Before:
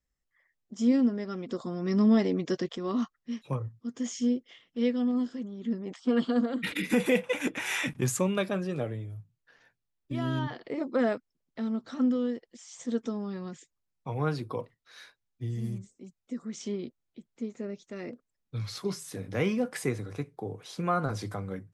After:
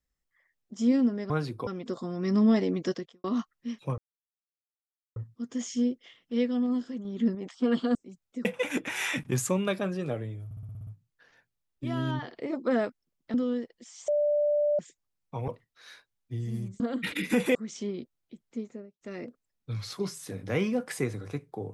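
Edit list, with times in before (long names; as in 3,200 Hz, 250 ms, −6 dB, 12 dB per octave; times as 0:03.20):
0:02.55–0:02.87: fade out quadratic
0:03.61: splice in silence 1.18 s
0:05.50–0:05.80: clip gain +5 dB
0:06.40–0:07.15: swap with 0:15.90–0:16.40
0:09.15: stutter 0.06 s, 8 plays
0:11.62–0:12.07: remove
0:12.81–0:13.52: beep over 590 Hz −22 dBFS
0:14.21–0:14.58: move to 0:01.30
0:17.43–0:17.86: fade out and dull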